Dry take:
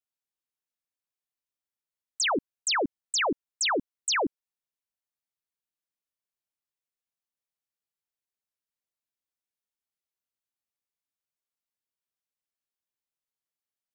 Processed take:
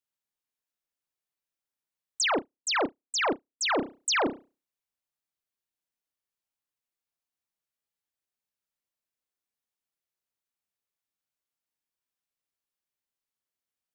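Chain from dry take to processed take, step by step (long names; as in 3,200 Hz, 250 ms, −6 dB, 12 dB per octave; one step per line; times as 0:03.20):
convolution reverb, pre-delay 31 ms, DRR 6 dB
0:02.28–0:03.78: expander for the loud parts 2.5 to 1, over −47 dBFS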